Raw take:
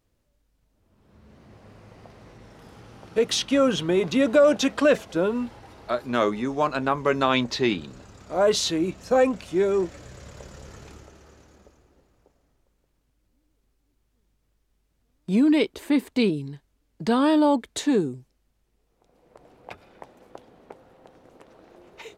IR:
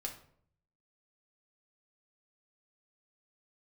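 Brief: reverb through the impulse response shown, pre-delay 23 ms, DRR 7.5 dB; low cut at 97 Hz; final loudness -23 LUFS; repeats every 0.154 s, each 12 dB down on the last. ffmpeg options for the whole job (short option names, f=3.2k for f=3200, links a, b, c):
-filter_complex "[0:a]highpass=97,aecho=1:1:154|308|462:0.251|0.0628|0.0157,asplit=2[a][b];[1:a]atrim=start_sample=2205,adelay=23[c];[b][c]afir=irnorm=-1:irlink=0,volume=-6.5dB[d];[a][d]amix=inputs=2:normalize=0,volume=-1dB"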